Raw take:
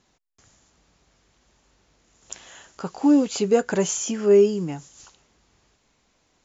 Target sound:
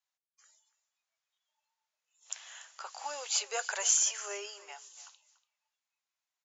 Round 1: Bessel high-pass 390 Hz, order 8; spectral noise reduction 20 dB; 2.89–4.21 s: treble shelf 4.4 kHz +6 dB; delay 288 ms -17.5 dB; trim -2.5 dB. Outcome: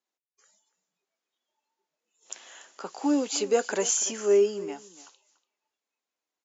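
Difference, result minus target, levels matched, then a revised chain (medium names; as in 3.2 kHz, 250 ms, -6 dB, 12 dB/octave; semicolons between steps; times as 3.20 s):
500 Hz band +14.0 dB
Bessel high-pass 1.1 kHz, order 8; spectral noise reduction 20 dB; 2.89–4.21 s: treble shelf 4.4 kHz +6 dB; delay 288 ms -17.5 dB; trim -2.5 dB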